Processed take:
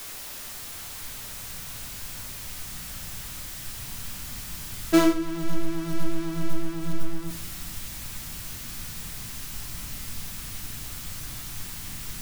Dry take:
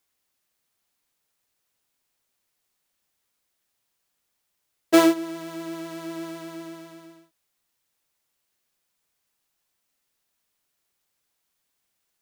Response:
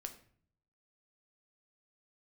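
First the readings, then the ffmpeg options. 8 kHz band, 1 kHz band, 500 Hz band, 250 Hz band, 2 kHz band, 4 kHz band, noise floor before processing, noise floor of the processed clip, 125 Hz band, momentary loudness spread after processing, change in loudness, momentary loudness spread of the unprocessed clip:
+8.0 dB, -3.0 dB, -3.5 dB, -0.5 dB, -0.5 dB, +3.0 dB, -77 dBFS, -39 dBFS, +14.5 dB, 4 LU, -8.0 dB, 21 LU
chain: -filter_complex "[0:a]aeval=exprs='val(0)+0.5*0.0376*sgn(val(0))':c=same[s0];[1:a]atrim=start_sample=2205[s1];[s0][s1]afir=irnorm=-1:irlink=0,asubboost=boost=10:cutoff=150"

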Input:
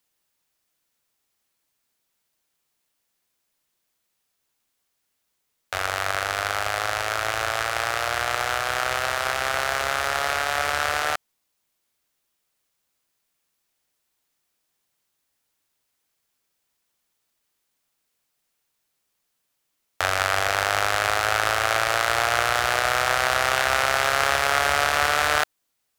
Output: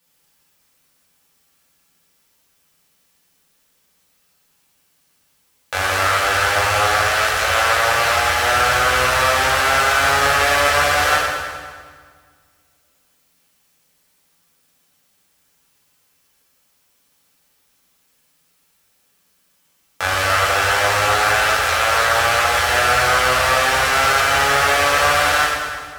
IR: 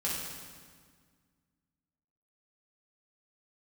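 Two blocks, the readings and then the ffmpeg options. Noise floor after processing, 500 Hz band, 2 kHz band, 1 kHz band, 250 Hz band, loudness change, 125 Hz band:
-63 dBFS, +7.0 dB, +7.5 dB, +7.0 dB, +8.5 dB, +7.0 dB, +9.0 dB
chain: -filter_complex "[0:a]alimiter=limit=0.251:level=0:latency=1:release=196[s0];[1:a]atrim=start_sample=2205[s1];[s0][s1]afir=irnorm=-1:irlink=0,volume=2.51"

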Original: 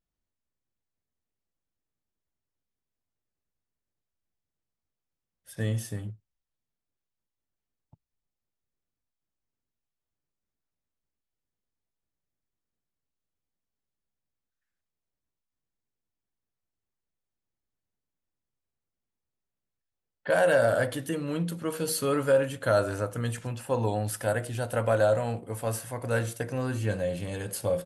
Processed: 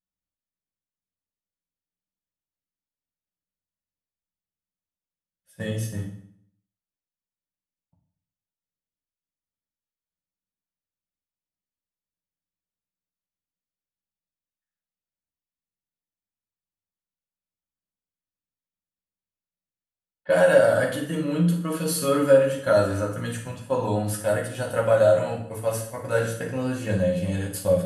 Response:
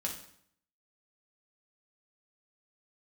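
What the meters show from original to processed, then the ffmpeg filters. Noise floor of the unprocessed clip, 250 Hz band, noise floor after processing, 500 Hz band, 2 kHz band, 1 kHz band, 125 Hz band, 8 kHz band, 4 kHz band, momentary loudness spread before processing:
under -85 dBFS, +6.0 dB, under -85 dBFS, +5.5 dB, +3.0 dB, +2.5 dB, +3.0 dB, +3.0 dB, +3.5 dB, 10 LU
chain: -filter_complex "[0:a]agate=range=0.251:threshold=0.0178:ratio=16:detection=peak[s0];[1:a]atrim=start_sample=2205[s1];[s0][s1]afir=irnorm=-1:irlink=0,volume=1.19"

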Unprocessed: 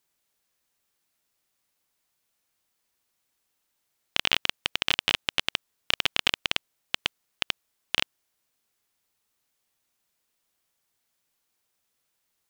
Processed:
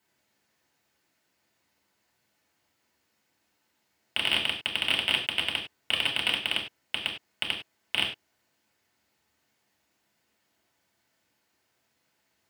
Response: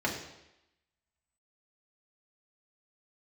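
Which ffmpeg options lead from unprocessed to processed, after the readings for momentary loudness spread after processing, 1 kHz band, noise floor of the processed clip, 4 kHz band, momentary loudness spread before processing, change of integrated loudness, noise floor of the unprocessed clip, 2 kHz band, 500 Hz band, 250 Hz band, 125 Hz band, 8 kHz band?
9 LU, -2.5 dB, -75 dBFS, +0.5 dB, 10 LU, 0.0 dB, -78 dBFS, 0.0 dB, -1.0 dB, +1.0 dB, -1.0 dB, -4.0 dB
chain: -filter_complex "[0:a]volume=5.96,asoftclip=hard,volume=0.168[s0];[1:a]atrim=start_sample=2205,afade=t=out:st=0.16:d=0.01,atrim=end_sample=7497[s1];[s0][s1]afir=irnorm=-1:irlink=0"

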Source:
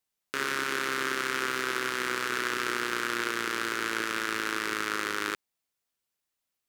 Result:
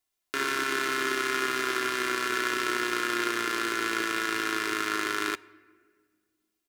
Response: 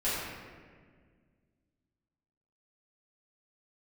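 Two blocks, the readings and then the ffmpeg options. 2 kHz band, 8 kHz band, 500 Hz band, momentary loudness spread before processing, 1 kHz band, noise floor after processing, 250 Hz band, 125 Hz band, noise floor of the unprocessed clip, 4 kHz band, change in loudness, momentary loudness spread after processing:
+1.5 dB, +1.5 dB, +3.0 dB, 2 LU, +2.5 dB, -83 dBFS, +3.5 dB, -2.0 dB, -85 dBFS, +1.5 dB, +2.0 dB, 2 LU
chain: -filter_complex "[0:a]aecho=1:1:2.9:0.62,asplit=2[s0][s1];[1:a]atrim=start_sample=2205[s2];[s1][s2]afir=irnorm=-1:irlink=0,volume=0.0376[s3];[s0][s3]amix=inputs=2:normalize=0"

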